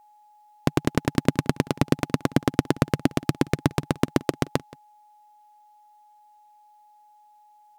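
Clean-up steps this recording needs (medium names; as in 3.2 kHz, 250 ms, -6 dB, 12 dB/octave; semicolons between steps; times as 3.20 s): band-stop 840 Hz, Q 30; inverse comb 175 ms -22 dB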